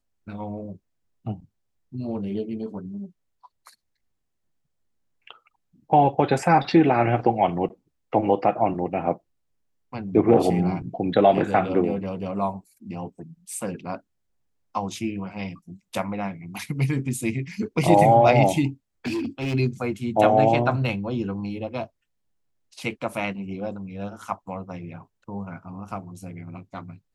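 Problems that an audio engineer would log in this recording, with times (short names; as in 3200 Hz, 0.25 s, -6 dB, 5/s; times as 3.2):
19.06–19.55 clipped -23 dBFS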